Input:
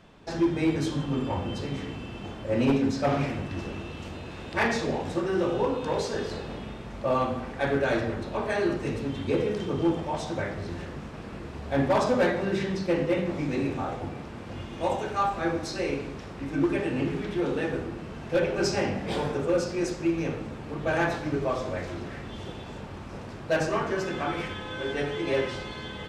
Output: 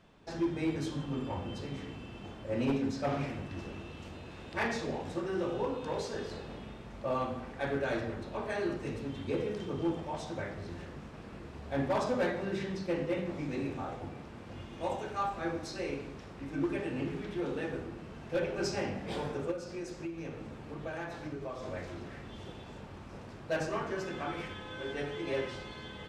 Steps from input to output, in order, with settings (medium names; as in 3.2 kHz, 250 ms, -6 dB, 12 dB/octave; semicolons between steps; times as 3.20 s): 19.51–21.63 s: compression, threshold -29 dBFS, peak gain reduction 8.5 dB; trim -7.5 dB